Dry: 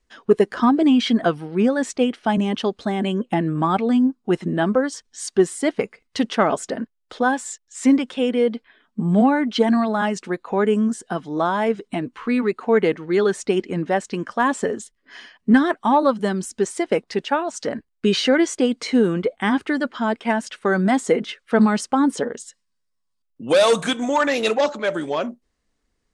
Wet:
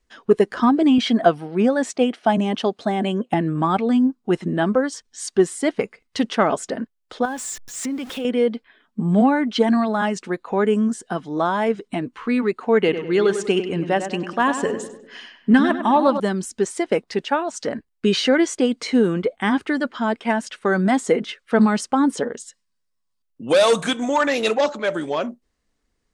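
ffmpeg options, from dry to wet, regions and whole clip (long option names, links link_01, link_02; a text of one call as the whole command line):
ffmpeg -i in.wav -filter_complex "[0:a]asettb=1/sr,asplit=3[link_01][link_02][link_03];[link_01]atrim=end=0.984[link_04];[link_02]atrim=start=0.98:end=3.34,asetpts=PTS-STARTPTS,afade=type=in:duration=0.004:curve=qsin,afade=type=out:start_time=2.356:duration=0.004:curve=qsin,highpass=120,equalizer=frequency=690:width=3.6:gain=7[link_05];[link_03]atrim=start=3.336[link_06];[link_04][link_05]acrossfade=duration=0.004:curve1=hsin:curve2=qsin[link_07];[link_07][link_06]acrossfade=duration=0.004:curve1=qsin:curve2=hsin,asettb=1/sr,asplit=3[link_08][link_09][link_10];[link_08]atrim=end=7.254[link_11];[link_09]atrim=start=7.25:end=8.25,asetpts=PTS-STARTPTS,afade=type=in:duration=0.004:curve=qsin,afade=type=out:start_time=0.996:duration=0.004:curve=qsin,aeval=exprs='val(0)+0.5*0.0224*sgn(val(0))':channel_layout=same,acompressor=threshold=-25dB:ratio=4:attack=3.2:release=140:knee=1:detection=peak[link_12];[link_10]atrim=start=8.246[link_13];[link_11][link_12]acrossfade=duration=0.004:curve1=hsin:curve2=qsin[link_14];[link_14][link_13]acrossfade=duration=0.004:curve1=qsin:curve2=hsin,asettb=1/sr,asplit=3[link_15][link_16][link_17];[link_15]atrim=end=12.784[link_18];[link_16]atrim=start=12.78:end=16.2,asetpts=PTS-STARTPTS,afade=type=in:duration=0.004:curve=qsin,afade=type=out:start_time=3.416:duration=0.004:curve=qsin,equalizer=frequency=2800:width=6.4:gain=9,asplit=2[link_19][link_20];[link_20]adelay=99,lowpass=frequency=2900:poles=1,volume=-9dB,asplit=2[link_21][link_22];[link_22]adelay=99,lowpass=frequency=2900:poles=1,volume=0.48,asplit=2[link_23][link_24];[link_24]adelay=99,lowpass=frequency=2900:poles=1,volume=0.48,asplit=2[link_25][link_26];[link_26]adelay=99,lowpass=frequency=2900:poles=1,volume=0.48,asplit=2[link_27][link_28];[link_28]adelay=99,lowpass=frequency=2900:poles=1,volume=0.48[link_29];[link_19][link_21][link_23][link_25][link_27][link_29]amix=inputs=6:normalize=0,atrim=end_sample=150822[link_30];[link_17]atrim=start=16.196[link_31];[link_18][link_30]acrossfade=duration=0.004:curve1=hsin:curve2=qsin[link_32];[link_32][link_31]acrossfade=duration=0.004:curve1=qsin:curve2=hsin" out.wav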